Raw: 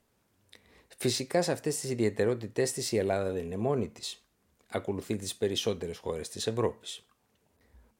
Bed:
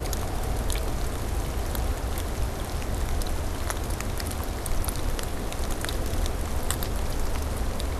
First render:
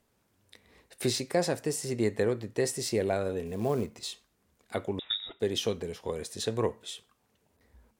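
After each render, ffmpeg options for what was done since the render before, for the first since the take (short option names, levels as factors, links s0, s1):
-filter_complex "[0:a]asettb=1/sr,asplit=3[s0][s1][s2];[s0]atrim=end=3.464[s3];[s1]atrim=start=3.46:end=4.09,asetpts=PTS-STARTPTS,afade=t=in:d=0.004:c=qsin,afade=t=out:st=0.626:d=0.004:c=qsin,acrusher=bits=6:mode=log:mix=0:aa=0.000001[s4];[s2]atrim=start=4.086[s5];[s3][s4]acrossfade=d=0.004:c1=hsin:c2=qsin[s6];[s6][s5]acrossfade=d=0.004:c1=qsin:c2=hsin,asettb=1/sr,asplit=3[s7][s8][s9];[s7]atrim=end=4.994[s10];[s8]atrim=start=4.99:end=5.4,asetpts=PTS-STARTPTS,afade=t=in:d=0.004:c=qsin,afade=t=out:st=0.406:d=0.004:c=qsin,lowpass=f=3300:t=q:w=0.5098,lowpass=f=3300:t=q:w=0.6013,lowpass=f=3300:t=q:w=0.9,lowpass=f=3300:t=q:w=2.563,afreqshift=-3900[s11];[s9]atrim=start=5.396[s12];[s10][s11]acrossfade=d=0.004:c1=hsin:c2=qsin[s13];[s13][s12]acrossfade=d=0.004:c1=qsin:c2=hsin"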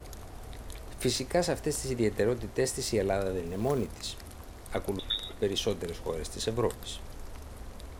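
-filter_complex "[1:a]volume=0.168[s0];[0:a][s0]amix=inputs=2:normalize=0"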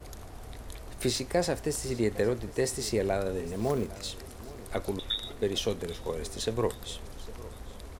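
-af "aecho=1:1:807|1614|2421|3228:0.112|0.055|0.0269|0.0132"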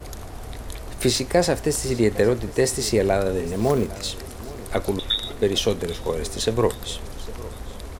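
-af "volume=2.66"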